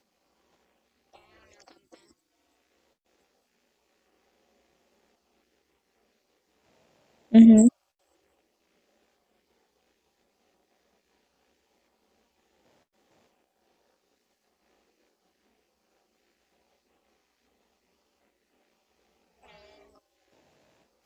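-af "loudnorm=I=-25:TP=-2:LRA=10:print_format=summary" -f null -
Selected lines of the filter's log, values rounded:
Input Integrated:    -16.3 LUFS
Input True Peak:      -5.0 dBTP
Input LRA:             0.0 LU
Input Threshold:     -37.8 LUFS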